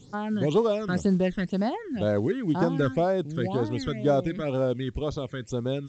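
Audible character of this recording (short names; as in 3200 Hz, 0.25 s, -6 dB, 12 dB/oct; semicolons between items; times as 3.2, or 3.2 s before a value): phasing stages 12, 2 Hz, lowest notch 760–2800 Hz; A-law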